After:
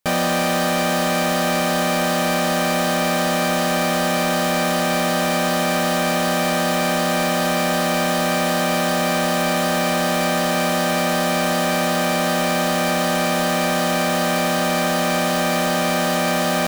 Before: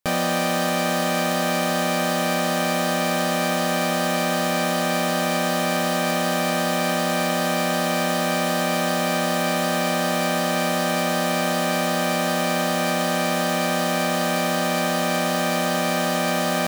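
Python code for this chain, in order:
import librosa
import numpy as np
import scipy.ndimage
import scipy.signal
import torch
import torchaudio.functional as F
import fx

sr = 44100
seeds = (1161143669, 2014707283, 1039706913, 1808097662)

y = 10.0 ** (-18.5 / 20.0) * np.tanh(x / 10.0 ** (-18.5 / 20.0))
y = y * 10.0 ** (5.0 / 20.0)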